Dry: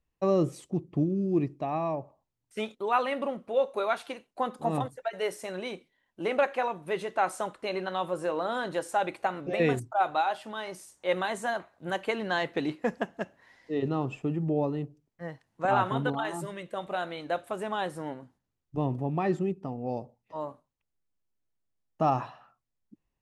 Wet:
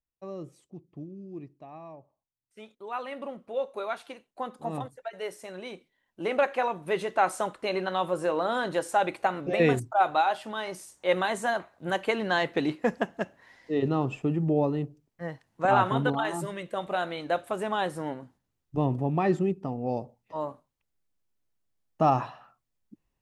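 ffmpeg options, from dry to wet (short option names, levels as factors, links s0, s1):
-af "volume=1.41,afade=t=in:st=2.59:d=0.84:silence=0.316228,afade=t=in:st=5.57:d=1.34:silence=0.421697"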